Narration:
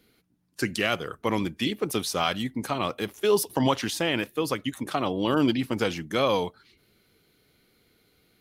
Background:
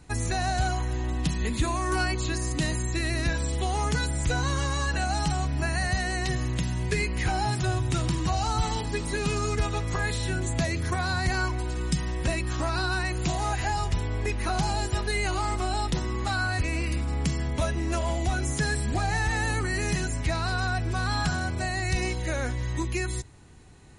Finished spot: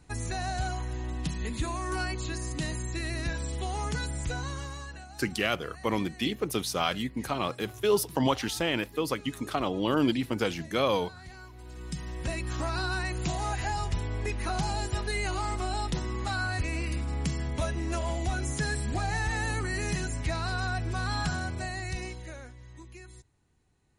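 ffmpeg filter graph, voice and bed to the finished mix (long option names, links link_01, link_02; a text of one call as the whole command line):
ffmpeg -i stem1.wav -i stem2.wav -filter_complex "[0:a]adelay=4600,volume=-2.5dB[link_01];[1:a]volume=11.5dB,afade=type=out:start_time=4.15:duration=0.93:silence=0.177828,afade=type=in:start_time=11.52:duration=1.05:silence=0.141254,afade=type=out:start_time=21.36:duration=1.17:silence=0.16788[link_02];[link_01][link_02]amix=inputs=2:normalize=0" out.wav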